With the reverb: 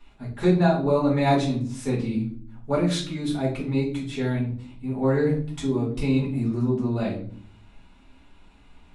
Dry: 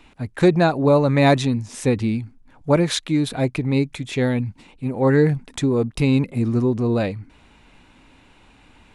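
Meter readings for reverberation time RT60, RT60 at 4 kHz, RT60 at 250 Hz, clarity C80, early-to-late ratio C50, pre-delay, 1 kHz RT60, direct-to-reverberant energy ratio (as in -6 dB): 0.50 s, 0.35 s, 0.80 s, 12.0 dB, 7.0 dB, 3 ms, 0.40 s, -7.0 dB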